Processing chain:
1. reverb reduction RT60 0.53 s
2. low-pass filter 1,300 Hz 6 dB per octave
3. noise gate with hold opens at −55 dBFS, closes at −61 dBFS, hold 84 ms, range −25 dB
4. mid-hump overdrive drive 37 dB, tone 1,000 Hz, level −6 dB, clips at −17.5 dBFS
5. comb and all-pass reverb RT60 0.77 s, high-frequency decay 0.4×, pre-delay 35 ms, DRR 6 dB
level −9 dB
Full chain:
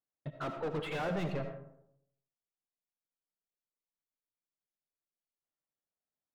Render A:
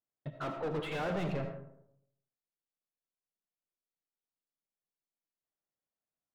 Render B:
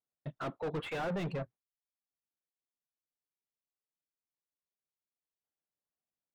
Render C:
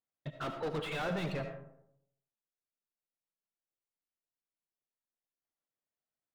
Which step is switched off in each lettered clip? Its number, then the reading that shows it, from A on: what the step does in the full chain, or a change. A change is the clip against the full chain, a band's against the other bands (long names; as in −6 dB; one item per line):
1, change in momentary loudness spread +3 LU
5, change in momentary loudness spread −2 LU
2, 4 kHz band +3.5 dB